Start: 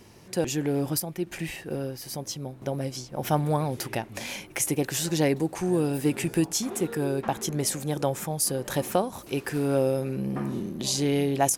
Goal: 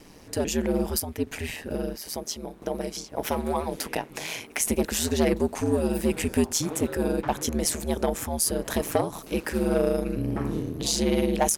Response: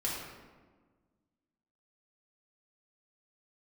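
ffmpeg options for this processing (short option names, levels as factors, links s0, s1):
-filter_complex "[0:a]asettb=1/sr,asplit=3[s0][s1][s2];[s0]atrim=end=1.954[s3];[s1]atrim=start=1.95:end=4.64,asetpts=PTS-STARTPTS,afade=t=in:d=0.004:c=qsin,afade=t=out:st=2.686:d=0.004:c=qsin,highpass=220[s4];[s2]atrim=start=4.636[s5];[s3][s4]acrossfade=d=0.004:c1=hsin:c2=qsin[s6];[s6][s5]acrossfade=d=0.004:c1=qsin:c2=hsin,asoftclip=type=tanh:threshold=0.158,aeval=exprs='val(0)*sin(2*PI*80*n/s)':c=same,volume=1.78"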